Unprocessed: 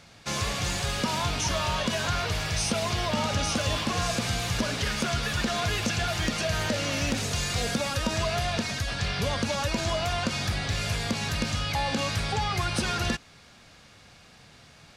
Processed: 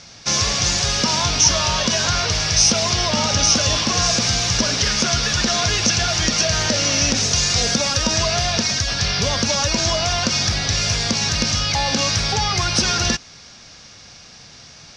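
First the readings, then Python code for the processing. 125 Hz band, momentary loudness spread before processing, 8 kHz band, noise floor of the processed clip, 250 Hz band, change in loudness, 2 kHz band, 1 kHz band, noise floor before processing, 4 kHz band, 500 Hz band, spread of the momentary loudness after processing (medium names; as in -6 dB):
+6.0 dB, 2 LU, +15.5 dB, -43 dBFS, +6.0 dB, +10.5 dB, +7.0 dB, +6.0 dB, -53 dBFS, +12.5 dB, +6.0 dB, 4 LU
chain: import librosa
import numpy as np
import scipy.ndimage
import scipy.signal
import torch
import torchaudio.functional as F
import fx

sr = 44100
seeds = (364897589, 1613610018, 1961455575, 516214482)

y = fx.lowpass_res(x, sr, hz=5700.0, q=4.9)
y = y * 10.0 ** (6.0 / 20.0)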